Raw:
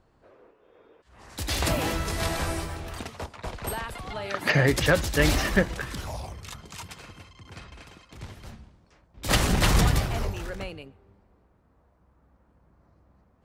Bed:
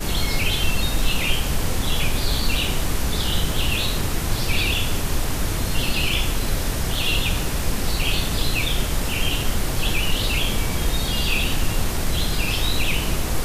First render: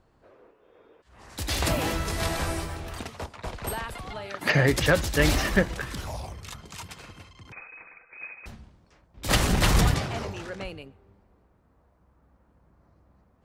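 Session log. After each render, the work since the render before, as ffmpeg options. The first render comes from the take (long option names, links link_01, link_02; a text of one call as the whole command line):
ffmpeg -i in.wav -filter_complex "[0:a]asettb=1/sr,asplit=3[link_01][link_02][link_03];[link_01]atrim=end=7.524[link_04];[link_02]atrim=start=7.52:end=8.46,asetpts=PTS-STARTPTS,afade=type=in:duration=0.004:curve=qsin,afade=type=out:start_time=0.936:duration=0.004:curve=qsin,lowpass=frequency=2200:width_type=q:width=0.5098,lowpass=frequency=2200:width_type=q:width=0.6013,lowpass=frequency=2200:width_type=q:width=0.9,lowpass=frequency=2200:width_type=q:width=2.563,afreqshift=-2600[link_05];[link_03]atrim=start=8.456[link_06];[link_04][link_05]acrossfade=duration=0.004:curve1=hsin:curve2=qsin[link_07];[link_07][link_06]acrossfade=duration=0.004:curve1=qsin:curve2=hsin,asettb=1/sr,asplit=3[link_08][link_09][link_10];[link_08]atrim=end=9.944[link_11];[link_09]atrim=start=9.94:end=10.65,asetpts=PTS-STARTPTS,afade=type=in:duration=0.004:curve=qsin,afade=type=out:start_time=0.706:duration=0.004:curve=qsin,highpass=110,lowpass=7500[link_12];[link_10]atrim=start=10.646[link_13];[link_11][link_12]acrossfade=duration=0.004:curve1=hsin:curve2=qsin[link_14];[link_14][link_13]acrossfade=duration=0.004:curve1=qsin:curve2=hsin,asplit=2[link_15][link_16];[link_15]atrim=end=4.41,asetpts=PTS-STARTPTS,afade=type=out:start_time=4:duration=0.41:silence=0.421697[link_17];[link_16]atrim=start=4.41,asetpts=PTS-STARTPTS,afade=type=in:duration=0.004:curve=hsin:silence=0.421697[link_18];[link_17][link_18]concat=n=2:v=0:a=1" out.wav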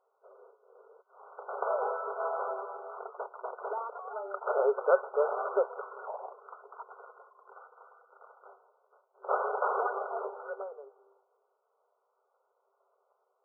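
ffmpeg -i in.wav -af "agate=range=-6dB:threshold=-59dB:ratio=16:detection=peak,afftfilt=real='re*between(b*sr/4096,380,1500)':imag='im*between(b*sr/4096,380,1500)':win_size=4096:overlap=0.75" out.wav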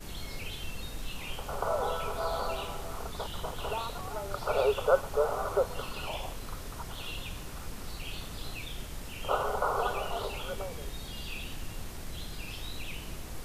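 ffmpeg -i in.wav -i bed.wav -filter_complex "[1:a]volume=-18dB[link_01];[0:a][link_01]amix=inputs=2:normalize=0" out.wav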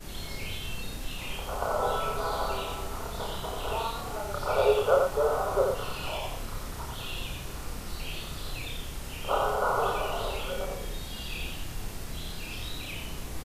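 ffmpeg -i in.wav -filter_complex "[0:a]asplit=2[link_01][link_02];[link_02]adelay=31,volume=-3dB[link_03];[link_01][link_03]amix=inputs=2:normalize=0,aecho=1:1:88:0.631" out.wav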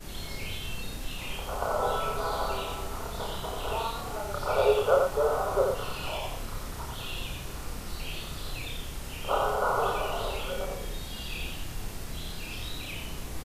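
ffmpeg -i in.wav -af anull out.wav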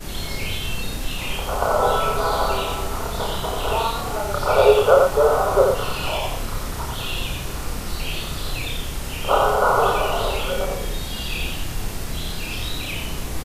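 ffmpeg -i in.wav -af "volume=9.5dB,alimiter=limit=-2dB:level=0:latency=1" out.wav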